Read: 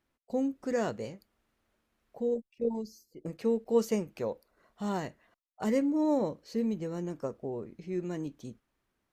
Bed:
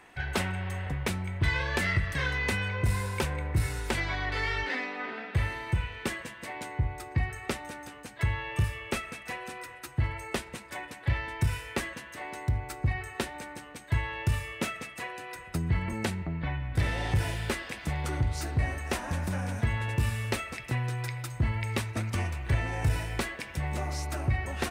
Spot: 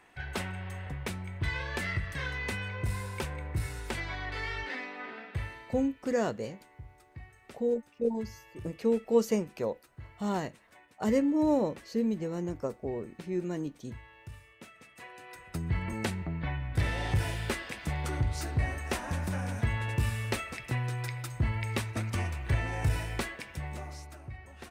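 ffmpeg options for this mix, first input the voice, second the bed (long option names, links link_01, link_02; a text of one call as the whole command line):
ffmpeg -i stem1.wav -i stem2.wav -filter_complex "[0:a]adelay=5400,volume=1.5dB[link_01];[1:a]volume=12dB,afade=type=out:start_time=5.17:duration=0.79:silence=0.211349,afade=type=in:start_time=14.7:duration=1.3:silence=0.133352,afade=type=out:start_time=23.09:duration=1.1:silence=0.188365[link_02];[link_01][link_02]amix=inputs=2:normalize=0" out.wav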